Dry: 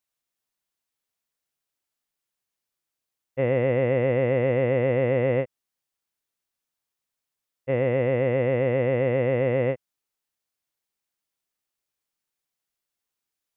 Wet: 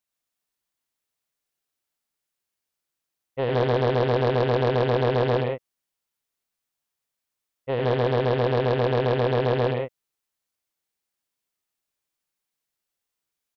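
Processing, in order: loudspeakers at several distances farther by 32 m -6 dB, 43 m -3 dB; Doppler distortion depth 0.65 ms; gain -1.5 dB

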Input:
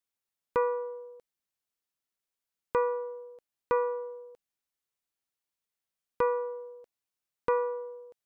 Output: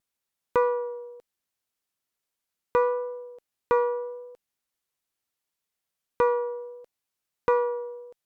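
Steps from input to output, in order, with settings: vibrato 0.74 Hz 17 cents; added harmonics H 6 -39 dB, 8 -38 dB, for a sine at -16.5 dBFS; gain +4.5 dB

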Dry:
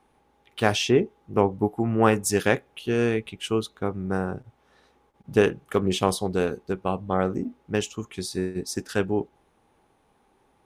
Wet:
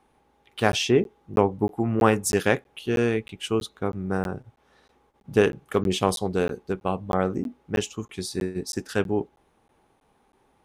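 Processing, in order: crackling interface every 0.32 s, samples 512, zero, from 0.72

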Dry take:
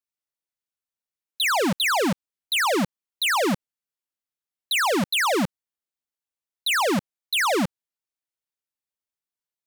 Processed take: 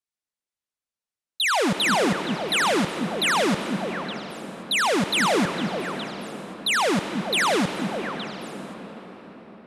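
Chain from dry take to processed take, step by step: LPF 11000 Hz 24 dB/oct; delay with a stepping band-pass 0.217 s, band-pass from 200 Hz, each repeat 1.4 oct, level -3.5 dB; reverb RT60 6.0 s, pre-delay 53 ms, DRR 7.5 dB

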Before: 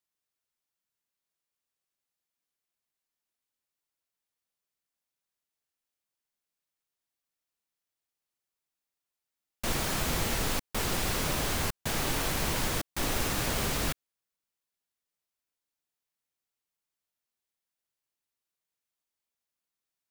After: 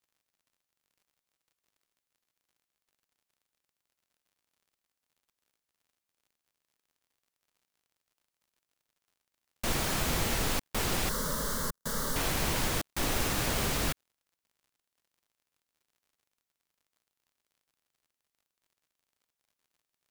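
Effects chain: crackle 67/s -59 dBFS; 11.09–12.16 fixed phaser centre 500 Hz, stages 8

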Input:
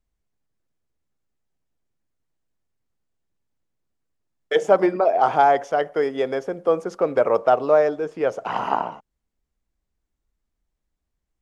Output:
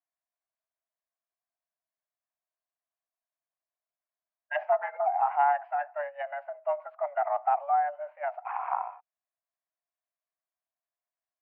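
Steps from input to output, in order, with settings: mistuned SSB +290 Hz 480–2800 Hz; formant shift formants -4 st; gain -7.5 dB

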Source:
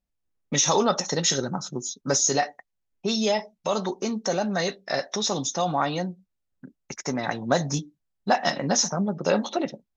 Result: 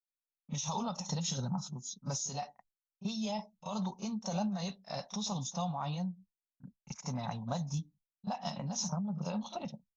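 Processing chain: expander -47 dBFS; EQ curve 200 Hz 0 dB, 330 Hz -23 dB, 950 Hz -4 dB, 1800 Hz -22 dB, 2600 Hz -9 dB; compressor, threshold -31 dBFS, peak gain reduction 8.5 dB; pre-echo 33 ms -13.5 dB; noise-modulated level, depth 65%; gain +2 dB

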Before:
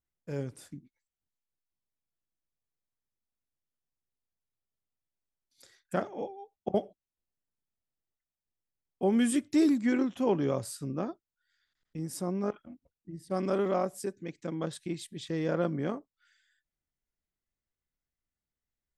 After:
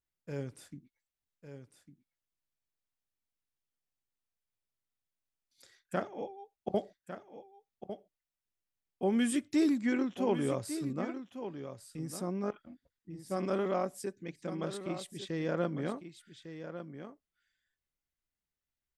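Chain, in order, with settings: bell 2400 Hz +3 dB 1.9 oct; on a send: echo 1.152 s -10.5 dB; on the sum: gain -3.5 dB

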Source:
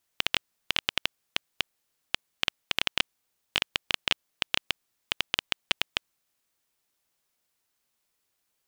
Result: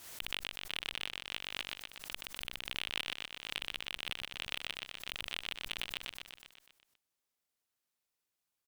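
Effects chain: limiter -12 dBFS, peak gain reduction 8 dB; added harmonics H 3 -27 dB, 5 -23 dB, 7 -18 dB, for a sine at -12 dBFS; on a send: feedback echo 0.123 s, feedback 58%, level -5 dB; on the sum: soft clip -18.5 dBFS, distortion -11 dB; backwards sustainer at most 75 dB/s; gain -2 dB

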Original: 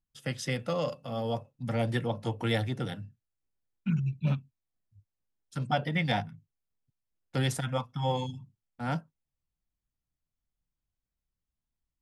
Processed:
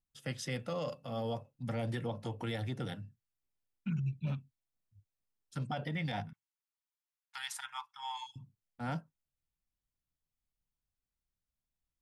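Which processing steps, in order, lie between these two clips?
6.33–8.36 elliptic high-pass 870 Hz, stop band 40 dB; limiter -24 dBFS, peak gain reduction 9.5 dB; gain -4 dB

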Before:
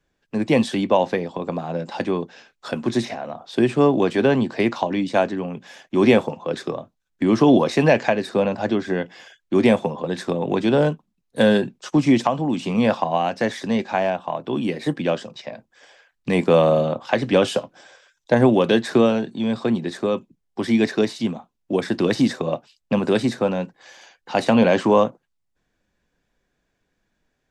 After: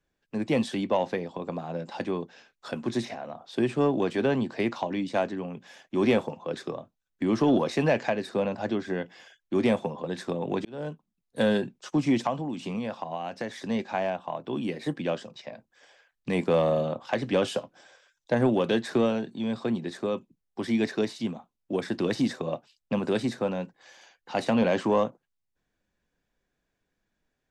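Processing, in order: 12.38–13.66 compressor 6:1, threshold -22 dBFS, peak gain reduction 9 dB; soft clip -4.5 dBFS, distortion -25 dB; 10.65–11.44 fade in equal-power; gain -7 dB

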